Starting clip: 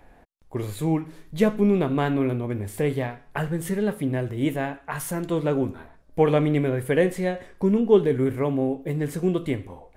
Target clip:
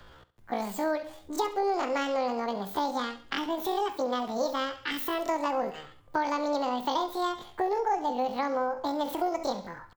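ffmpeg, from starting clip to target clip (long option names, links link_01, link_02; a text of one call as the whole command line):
ffmpeg -i in.wav -filter_complex "[0:a]asplit=2[link_01][link_02];[link_02]alimiter=limit=-14.5dB:level=0:latency=1:release=322,volume=0dB[link_03];[link_01][link_03]amix=inputs=2:normalize=0,asetrate=85689,aresample=44100,atempo=0.514651,acrossover=split=180|490[link_04][link_05][link_06];[link_04]acompressor=threshold=-47dB:ratio=4[link_07];[link_05]acompressor=threshold=-32dB:ratio=4[link_08];[link_06]acompressor=threshold=-23dB:ratio=4[link_09];[link_07][link_08][link_09]amix=inputs=3:normalize=0,aecho=1:1:68|136|204:0.168|0.052|0.0161,volume=-5dB" out.wav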